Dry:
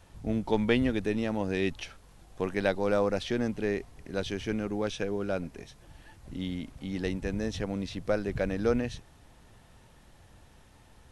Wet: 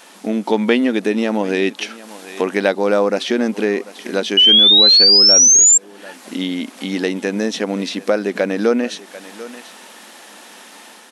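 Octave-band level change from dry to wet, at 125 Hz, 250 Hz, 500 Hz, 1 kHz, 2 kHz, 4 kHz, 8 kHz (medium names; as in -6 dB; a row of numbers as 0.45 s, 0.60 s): no reading, +11.0 dB, +11.5 dB, +12.0 dB, +12.5 dB, +31.5 dB, +37.5 dB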